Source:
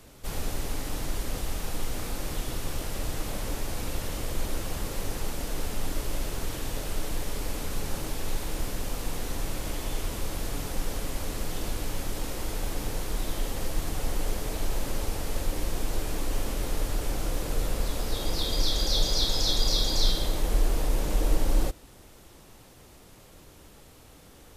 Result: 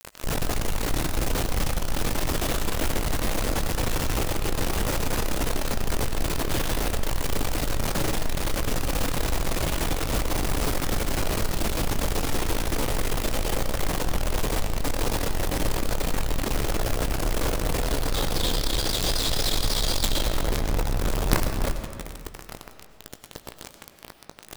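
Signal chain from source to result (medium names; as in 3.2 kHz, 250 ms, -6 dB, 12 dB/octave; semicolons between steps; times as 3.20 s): treble shelf 4.6 kHz -7 dB; in parallel at -3 dB: saturation -29 dBFS, distortion -8 dB; on the sum: companded quantiser 2-bit; hard clipper -8 dBFS, distortion -17 dB; doubling 18 ms -13 dB; on a send at -8 dB: reverberation RT60 2.2 s, pre-delay 60 ms; on the sum: trim +1.5 dB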